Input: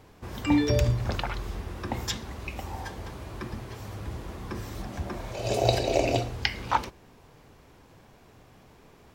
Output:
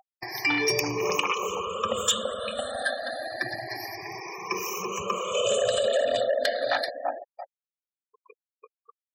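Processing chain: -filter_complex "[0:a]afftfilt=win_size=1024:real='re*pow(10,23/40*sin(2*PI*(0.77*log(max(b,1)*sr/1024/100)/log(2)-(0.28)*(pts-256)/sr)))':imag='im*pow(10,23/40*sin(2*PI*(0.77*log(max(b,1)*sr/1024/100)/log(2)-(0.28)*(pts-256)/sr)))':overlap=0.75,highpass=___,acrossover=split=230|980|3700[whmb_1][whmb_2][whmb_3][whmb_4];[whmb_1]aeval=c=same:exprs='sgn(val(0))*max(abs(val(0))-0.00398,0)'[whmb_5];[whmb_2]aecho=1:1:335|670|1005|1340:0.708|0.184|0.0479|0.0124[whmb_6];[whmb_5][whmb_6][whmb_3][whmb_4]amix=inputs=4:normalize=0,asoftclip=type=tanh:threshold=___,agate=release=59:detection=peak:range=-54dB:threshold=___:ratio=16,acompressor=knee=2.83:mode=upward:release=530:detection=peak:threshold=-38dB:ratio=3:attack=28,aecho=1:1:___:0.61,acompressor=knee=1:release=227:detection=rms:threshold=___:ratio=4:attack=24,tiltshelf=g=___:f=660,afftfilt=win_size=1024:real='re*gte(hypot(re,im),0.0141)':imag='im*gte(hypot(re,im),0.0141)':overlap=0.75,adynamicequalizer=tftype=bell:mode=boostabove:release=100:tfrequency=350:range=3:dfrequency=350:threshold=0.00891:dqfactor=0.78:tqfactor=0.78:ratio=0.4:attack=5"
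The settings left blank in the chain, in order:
180, -16.5dB, -47dB, 1.7, -26dB, -6.5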